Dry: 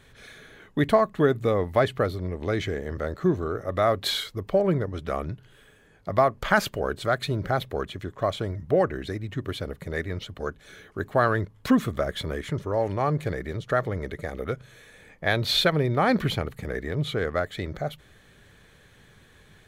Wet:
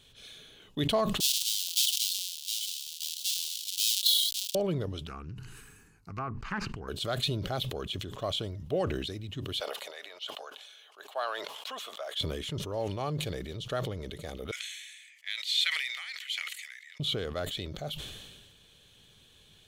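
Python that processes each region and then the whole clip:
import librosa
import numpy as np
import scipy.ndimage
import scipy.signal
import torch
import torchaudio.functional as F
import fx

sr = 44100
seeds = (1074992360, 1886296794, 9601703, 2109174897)

y = fx.chain(x, sr, fx.halfwave_hold(),
    fx.cheby2_highpass(hz=1100.0, order=4, stop_db=60), at=(1.2, 4.55))
y = fx.chain(y, sr, fx.env_lowpass_down(base_hz=1700.0, full_db=-19.0),
    fx.fixed_phaser(hz=1400.0, stages=4),
    fx.doppler_dist(depth_ms=0.26), at=(5.07, 6.88))
y = fx.chain(y, sr, fx.cheby1_highpass(hz=680.0, order=3),
    fx.high_shelf(hz=4000.0, db=-8.5), at=(9.6, 12.2))
y = fx.chain(y, sr, fx.ladder_highpass(hz=1900.0, resonance_pct=80),
    fx.peak_eq(hz=7500.0, db=10.0, octaves=0.84), at=(14.51, 17.0))
y = fx.high_shelf_res(y, sr, hz=2400.0, db=7.5, q=3.0)
y = fx.sustainer(y, sr, db_per_s=36.0)
y = y * 10.0 ** (-8.5 / 20.0)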